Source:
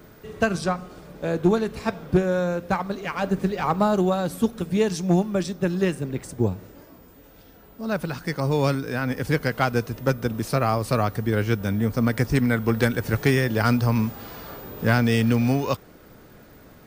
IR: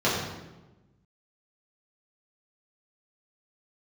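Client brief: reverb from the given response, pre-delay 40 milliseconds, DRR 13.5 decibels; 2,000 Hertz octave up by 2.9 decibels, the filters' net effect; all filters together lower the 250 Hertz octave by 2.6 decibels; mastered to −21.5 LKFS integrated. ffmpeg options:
-filter_complex "[0:a]equalizer=frequency=250:width_type=o:gain=-3.5,equalizer=frequency=2000:width_type=o:gain=4,asplit=2[link_01][link_02];[1:a]atrim=start_sample=2205,adelay=40[link_03];[link_02][link_03]afir=irnorm=-1:irlink=0,volume=-29.5dB[link_04];[link_01][link_04]amix=inputs=2:normalize=0,volume=2.5dB"

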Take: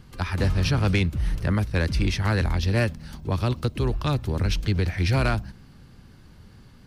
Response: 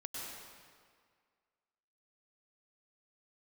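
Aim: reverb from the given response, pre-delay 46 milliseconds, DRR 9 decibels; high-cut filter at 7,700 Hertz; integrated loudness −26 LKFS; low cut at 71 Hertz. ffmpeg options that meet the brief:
-filter_complex "[0:a]highpass=71,lowpass=7700,asplit=2[link_01][link_02];[1:a]atrim=start_sample=2205,adelay=46[link_03];[link_02][link_03]afir=irnorm=-1:irlink=0,volume=-9dB[link_04];[link_01][link_04]amix=inputs=2:normalize=0,volume=-0.5dB"

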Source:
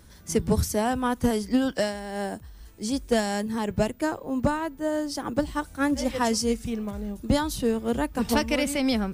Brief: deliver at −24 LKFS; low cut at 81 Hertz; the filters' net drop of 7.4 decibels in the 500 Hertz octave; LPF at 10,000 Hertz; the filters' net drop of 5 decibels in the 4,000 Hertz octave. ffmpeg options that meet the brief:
ffmpeg -i in.wav -af "highpass=81,lowpass=10000,equalizer=frequency=500:width_type=o:gain=-9,equalizer=frequency=4000:width_type=o:gain=-7,volume=6dB" out.wav

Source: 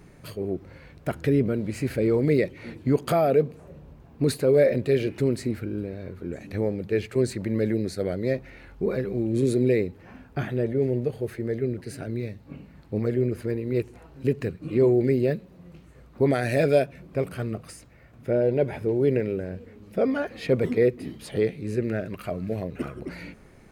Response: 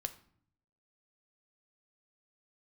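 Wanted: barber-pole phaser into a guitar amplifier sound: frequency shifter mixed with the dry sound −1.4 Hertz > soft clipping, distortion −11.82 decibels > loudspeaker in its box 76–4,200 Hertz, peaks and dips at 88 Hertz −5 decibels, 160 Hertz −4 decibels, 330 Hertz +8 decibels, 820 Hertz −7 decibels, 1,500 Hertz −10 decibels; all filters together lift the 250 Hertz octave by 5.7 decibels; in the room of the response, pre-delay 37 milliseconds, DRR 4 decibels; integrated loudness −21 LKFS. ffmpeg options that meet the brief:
-filter_complex "[0:a]equalizer=frequency=250:width_type=o:gain=3.5,asplit=2[link_01][link_02];[1:a]atrim=start_sample=2205,adelay=37[link_03];[link_02][link_03]afir=irnorm=-1:irlink=0,volume=-3dB[link_04];[link_01][link_04]amix=inputs=2:normalize=0,asplit=2[link_05][link_06];[link_06]afreqshift=-1.4[link_07];[link_05][link_07]amix=inputs=2:normalize=1,asoftclip=threshold=-19.5dB,highpass=76,equalizer=frequency=88:width_type=q:width=4:gain=-5,equalizer=frequency=160:width_type=q:width=4:gain=-4,equalizer=frequency=330:width_type=q:width=4:gain=8,equalizer=frequency=820:width_type=q:width=4:gain=-7,equalizer=frequency=1500:width_type=q:width=4:gain=-10,lowpass=frequency=4200:width=0.5412,lowpass=frequency=4200:width=1.3066,volume=6dB"

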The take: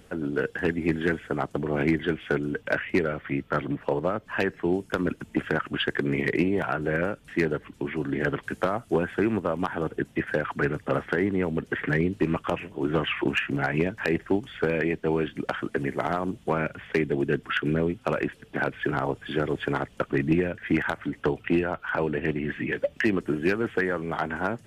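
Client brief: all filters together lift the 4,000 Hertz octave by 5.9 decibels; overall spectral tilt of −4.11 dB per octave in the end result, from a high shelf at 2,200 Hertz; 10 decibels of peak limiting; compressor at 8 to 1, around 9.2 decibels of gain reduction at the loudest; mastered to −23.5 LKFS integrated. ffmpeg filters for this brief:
ffmpeg -i in.wav -af "highshelf=frequency=2200:gain=3.5,equalizer=frequency=4000:width_type=o:gain=5.5,acompressor=threshold=-28dB:ratio=8,volume=11.5dB,alimiter=limit=-11.5dB:level=0:latency=1" out.wav

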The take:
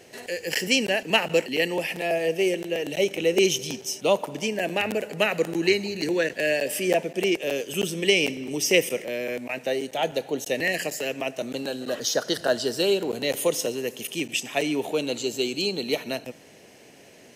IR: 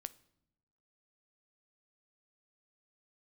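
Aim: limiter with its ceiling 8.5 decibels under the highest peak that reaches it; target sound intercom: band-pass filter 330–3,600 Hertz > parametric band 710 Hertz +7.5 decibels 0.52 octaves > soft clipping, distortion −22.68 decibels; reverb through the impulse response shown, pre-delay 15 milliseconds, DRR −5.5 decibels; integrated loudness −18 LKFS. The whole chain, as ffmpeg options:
-filter_complex "[0:a]alimiter=limit=-14.5dB:level=0:latency=1,asplit=2[link_01][link_02];[1:a]atrim=start_sample=2205,adelay=15[link_03];[link_02][link_03]afir=irnorm=-1:irlink=0,volume=9.5dB[link_04];[link_01][link_04]amix=inputs=2:normalize=0,highpass=330,lowpass=3600,equalizer=frequency=710:width_type=o:width=0.52:gain=7.5,asoftclip=threshold=-5dB,volume=2dB"

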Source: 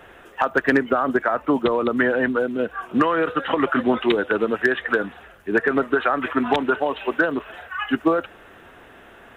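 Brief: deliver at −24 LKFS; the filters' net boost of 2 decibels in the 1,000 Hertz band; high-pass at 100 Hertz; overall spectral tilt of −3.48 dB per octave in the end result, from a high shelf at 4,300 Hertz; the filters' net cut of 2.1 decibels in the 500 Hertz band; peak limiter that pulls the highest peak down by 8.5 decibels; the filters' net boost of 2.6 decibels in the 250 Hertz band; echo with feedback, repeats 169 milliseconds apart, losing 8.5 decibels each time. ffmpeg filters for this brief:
ffmpeg -i in.wav -af "highpass=100,equalizer=frequency=250:width_type=o:gain=4.5,equalizer=frequency=500:width_type=o:gain=-5,equalizer=frequency=1000:width_type=o:gain=4,highshelf=frequency=4300:gain=-4.5,alimiter=limit=-12.5dB:level=0:latency=1,aecho=1:1:169|338|507|676:0.376|0.143|0.0543|0.0206,volume=-1.5dB" out.wav

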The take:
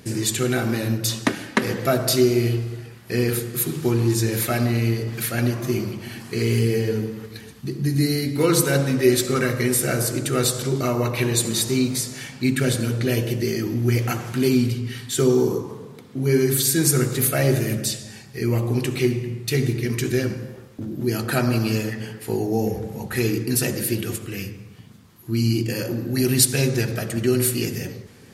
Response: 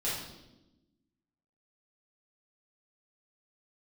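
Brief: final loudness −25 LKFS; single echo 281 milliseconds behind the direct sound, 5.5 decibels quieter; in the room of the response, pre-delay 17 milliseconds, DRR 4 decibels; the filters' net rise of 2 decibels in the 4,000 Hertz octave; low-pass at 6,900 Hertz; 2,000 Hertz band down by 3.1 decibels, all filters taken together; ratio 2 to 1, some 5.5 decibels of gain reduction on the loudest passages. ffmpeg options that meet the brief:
-filter_complex "[0:a]lowpass=6900,equalizer=frequency=2000:width_type=o:gain=-5,equalizer=frequency=4000:width_type=o:gain=4,acompressor=threshold=-22dB:ratio=2,aecho=1:1:281:0.531,asplit=2[link_01][link_02];[1:a]atrim=start_sample=2205,adelay=17[link_03];[link_02][link_03]afir=irnorm=-1:irlink=0,volume=-10dB[link_04];[link_01][link_04]amix=inputs=2:normalize=0,volume=-2dB"

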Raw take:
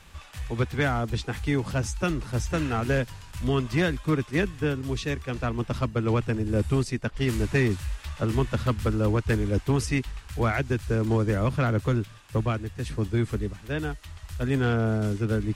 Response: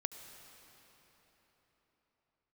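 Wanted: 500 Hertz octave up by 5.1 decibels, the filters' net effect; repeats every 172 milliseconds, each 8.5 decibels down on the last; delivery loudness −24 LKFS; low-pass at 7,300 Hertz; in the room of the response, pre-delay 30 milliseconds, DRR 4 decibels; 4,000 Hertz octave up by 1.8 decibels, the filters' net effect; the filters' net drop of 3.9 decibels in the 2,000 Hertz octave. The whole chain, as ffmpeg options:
-filter_complex "[0:a]lowpass=7300,equalizer=frequency=500:width_type=o:gain=6.5,equalizer=frequency=2000:width_type=o:gain=-7,equalizer=frequency=4000:width_type=o:gain=5,aecho=1:1:172|344|516|688:0.376|0.143|0.0543|0.0206,asplit=2[link_01][link_02];[1:a]atrim=start_sample=2205,adelay=30[link_03];[link_02][link_03]afir=irnorm=-1:irlink=0,volume=-3.5dB[link_04];[link_01][link_04]amix=inputs=2:normalize=0,volume=-0.5dB"

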